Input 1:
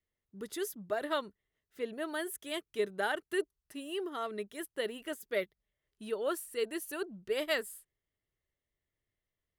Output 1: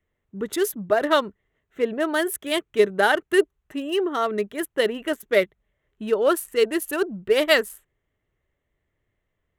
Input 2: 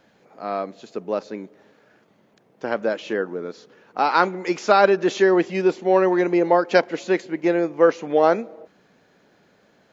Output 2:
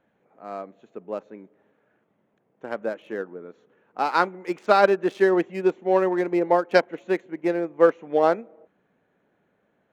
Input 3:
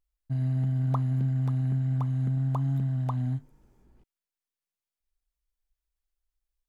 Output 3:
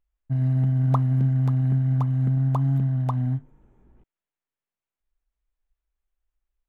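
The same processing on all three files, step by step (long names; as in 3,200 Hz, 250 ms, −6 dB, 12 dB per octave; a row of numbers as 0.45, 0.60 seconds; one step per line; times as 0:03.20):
adaptive Wiener filter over 9 samples
expander for the loud parts 1.5 to 1, over −29 dBFS
loudness normalisation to −23 LKFS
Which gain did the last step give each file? +15.0, −0.5, +6.5 decibels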